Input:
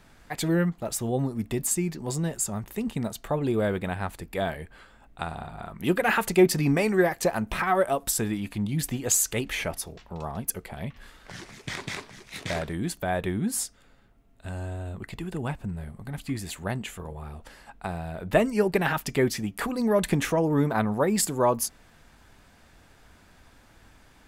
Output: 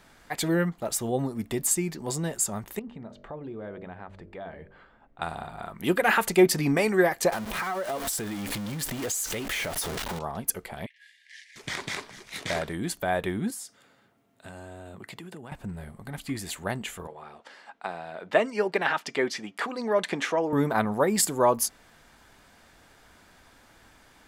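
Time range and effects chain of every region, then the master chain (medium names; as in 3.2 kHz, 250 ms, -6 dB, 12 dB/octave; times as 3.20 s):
2.79–5.22 s: de-hum 48.26 Hz, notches 13 + compression 2.5:1, threshold -38 dBFS + tape spacing loss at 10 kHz 33 dB
7.32–10.19 s: jump at every zero crossing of -27.5 dBFS + compression 10:1, threshold -28 dBFS
10.86–11.56 s: brick-wall FIR band-pass 1.6–12 kHz + tilt EQ -3.5 dB/octave
13.50–15.52 s: high-pass 100 Hz 24 dB/octave + compression 8:1, threshold -37 dBFS
17.07–20.53 s: band-pass 190–5200 Hz + bass shelf 290 Hz -8.5 dB
whole clip: bass shelf 190 Hz -9 dB; band-stop 2.6 kHz, Q 23; trim +2 dB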